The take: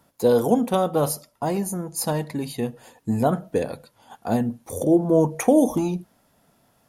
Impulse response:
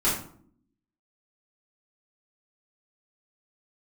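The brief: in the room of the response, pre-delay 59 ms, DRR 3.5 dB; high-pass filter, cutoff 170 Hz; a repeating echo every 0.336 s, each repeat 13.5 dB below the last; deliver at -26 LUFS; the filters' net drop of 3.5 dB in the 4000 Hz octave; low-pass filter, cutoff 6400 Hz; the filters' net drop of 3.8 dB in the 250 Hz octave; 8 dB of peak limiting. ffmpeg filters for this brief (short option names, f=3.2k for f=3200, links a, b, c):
-filter_complex "[0:a]highpass=170,lowpass=6.4k,equalizer=f=250:t=o:g=-4,equalizer=f=4k:t=o:g=-3.5,alimiter=limit=-14.5dB:level=0:latency=1,aecho=1:1:336|672:0.211|0.0444,asplit=2[a][b];[1:a]atrim=start_sample=2205,adelay=59[c];[b][c]afir=irnorm=-1:irlink=0,volume=-16dB[d];[a][d]amix=inputs=2:normalize=0,volume=-1dB"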